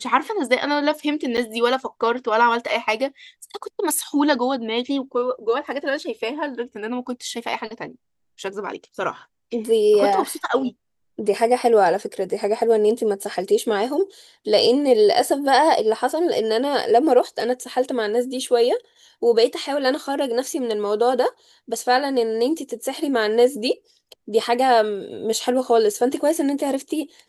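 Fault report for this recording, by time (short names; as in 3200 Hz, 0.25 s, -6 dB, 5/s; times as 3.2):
1.37–1.38 gap 8.3 ms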